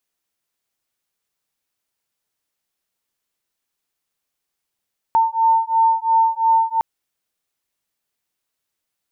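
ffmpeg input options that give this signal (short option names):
-f lavfi -i "aevalsrc='0.15*(sin(2*PI*901*t)+sin(2*PI*903.9*t))':d=1.66:s=44100"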